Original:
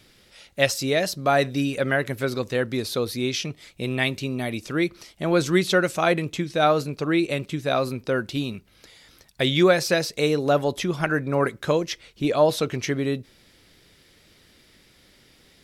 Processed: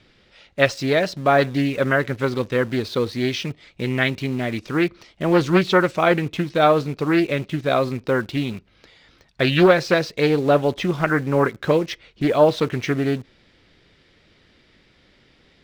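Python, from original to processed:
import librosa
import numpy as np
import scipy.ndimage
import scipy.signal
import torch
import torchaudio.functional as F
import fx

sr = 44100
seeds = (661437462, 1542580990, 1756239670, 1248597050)

p1 = scipy.signal.sosfilt(scipy.signal.butter(2, 3700.0, 'lowpass', fs=sr, output='sos'), x)
p2 = fx.quant_dither(p1, sr, seeds[0], bits=6, dither='none')
p3 = p1 + F.gain(torch.from_numpy(p2), -9.5).numpy()
p4 = fx.doppler_dist(p3, sr, depth_ms=0.29)
y = F.gain(torch.from_numpy(p4), 1.0).numpy()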